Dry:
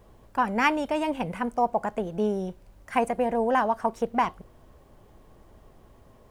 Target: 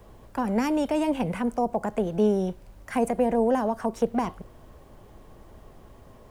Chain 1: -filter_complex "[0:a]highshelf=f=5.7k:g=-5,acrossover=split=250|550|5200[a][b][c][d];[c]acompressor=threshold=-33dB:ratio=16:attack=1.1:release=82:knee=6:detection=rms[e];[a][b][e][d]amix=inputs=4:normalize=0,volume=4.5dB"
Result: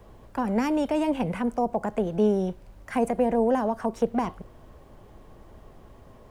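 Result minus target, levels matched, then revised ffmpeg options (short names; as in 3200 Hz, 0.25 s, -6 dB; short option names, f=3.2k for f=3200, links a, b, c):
8000 Hz band -3.5 dB
-filter_complex "[0:a]acrossover=split=250|550|5200[a][b][c][d];[c]acompressor=threshold=-33dB:ratio=16:attack=1.1:release=82:knee=6:detection=rms[e];[a][b][e][d]amix=inputs=4:normalize=0,volume=4.5dB"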